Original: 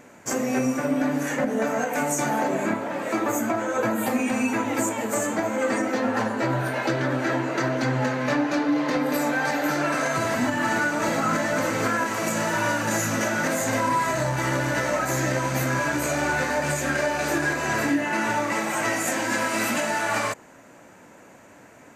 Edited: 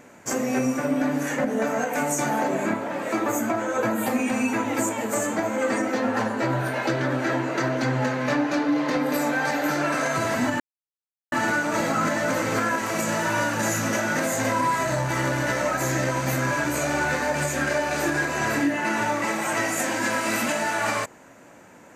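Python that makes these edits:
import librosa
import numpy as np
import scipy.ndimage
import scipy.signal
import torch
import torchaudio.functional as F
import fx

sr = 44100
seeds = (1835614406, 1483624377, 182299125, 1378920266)

y = fx.edit(x, sr, fx.insert_silence(at_s=10.6, length_s=0.72), tone=tone)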